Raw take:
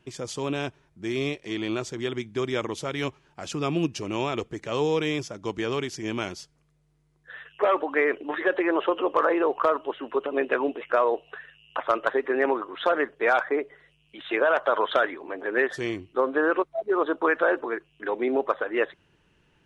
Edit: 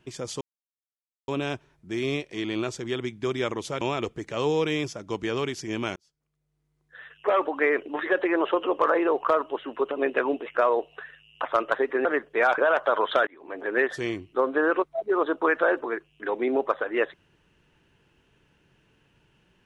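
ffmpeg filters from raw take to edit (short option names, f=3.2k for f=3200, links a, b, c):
-filter_complex "[0:a]asplit=7[a][b][c][d][e][f][g];[a]atrim=end=0.41,asetpts=PTS-STARTPTS,afade=t=out:st=0.406:d=0.004:c=hsin,apad=pad_dur=0.87[h];[b]atrim=start=0.41:end=2.942,asetpts=PTS-STARTPTS,afade=t=in:d=0.004:c=hsin[i];[c]atrim=start=4.158:end=6.31,asetpts=PTS-STARTPTS,afade=t=out:st=2.148:d=0.004:c=hsin[j];[d]atrim=start=6.31:end=12.402,asetpts=PTS-STARTPTS,afade=t=in:d=1.48[k];[e]atrim=start=12.908:end=13.442[l];[f]atrim=start=14.378:end=15.07,asetpts=PTS-STARTPTS,afade=t=out:st=0.688:d=0.004:c=hsin[m];[g]atrim=start=15.07,asetpts=PTS-STARTPTS,afade=t=in:d=0.33[n];[h][i]concat=n=2:v=0:a=1[o];[j][k]concat=n=2:v=0:a=1[p];[o][p]acrossfade=d=0.004:c1=hsin:c2=hsin[q];[q][l]acrossfade=d=0.004:c1=hsin:c2=hsin[r];[m][n]concat=n=2:v=0:a=1[s];[r][s]acrossfade=d=0.004:c1=hsin:c2=hsin"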